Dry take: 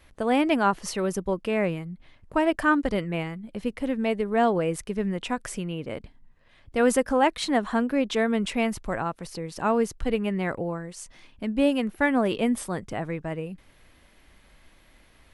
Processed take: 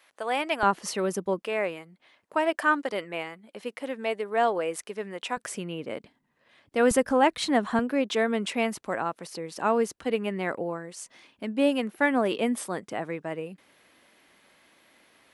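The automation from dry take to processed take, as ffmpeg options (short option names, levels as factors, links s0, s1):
-af "asetnsamples=n=441:p=0,asendcmd='0.63 highpass f 200;1.42 highpass f 460;5.37 highpass f 220;6.91 highpass f 76;7.79 highpass f 250',highpass=660"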